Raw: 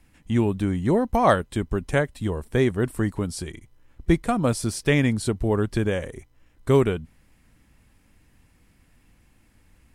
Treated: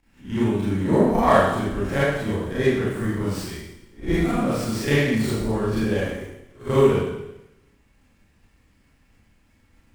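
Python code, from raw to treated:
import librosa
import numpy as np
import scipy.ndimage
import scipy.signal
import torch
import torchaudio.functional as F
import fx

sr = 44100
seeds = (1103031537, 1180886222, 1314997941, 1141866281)

y = fx.spec_swells(x, sr, rise_s=0.32)
y = fx.level_steps(y, sr, step_db=9)
y = fx.rev_schroeder(y, sr, rt60_s=0.91, comb_ms=28, drr_db=-9.5)
y = fx.running_max(y, sr, window=3)
y = F.gain(torch.from_numpy(y), -5.0).numpy()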